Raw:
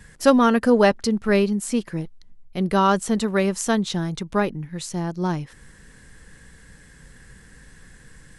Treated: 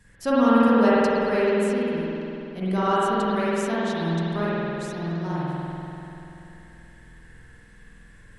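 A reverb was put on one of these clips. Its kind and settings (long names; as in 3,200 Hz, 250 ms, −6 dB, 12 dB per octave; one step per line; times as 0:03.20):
spring reverb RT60 3.1 s, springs 48 ms, chirp 65 ms, DRR −9 dB
level −11 dB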